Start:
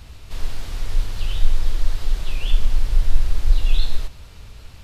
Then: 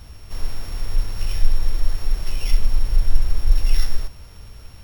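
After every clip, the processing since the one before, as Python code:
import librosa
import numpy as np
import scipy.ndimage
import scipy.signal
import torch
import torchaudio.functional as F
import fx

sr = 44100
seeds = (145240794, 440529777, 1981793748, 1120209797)

y = np.r_[np.sort(x[:len(x) // 8 * 8].reshape(-1, 8), axis=1).ravel(), x[len(x) // 8 * 8:]]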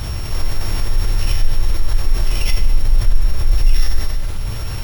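y = fx.rev_fdn(x, sr, rt60_s=1.3, lf_ratio=1.2, hf_ratio=0.95, size_ms=52.0, drr_db=2.5)
y = fx.env_flatten(y, sr, amount_pct=50)
y = y * 10.0 ** (-1.5 / 20.0)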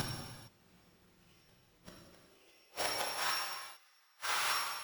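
y = fx.filter_sweep_highpass(x, sr, from_hz=170.0, to_hz=1100.0, start_s=1.75, end_s=3.32, q=1.8)
y = fx.gate_flip(y, sr, shuts_db=-22.0, range_db=-41)
y = fx.rev_gated(y, sr, seeds[0], gate_ms=480, shape='falling', drr_db=-3.5)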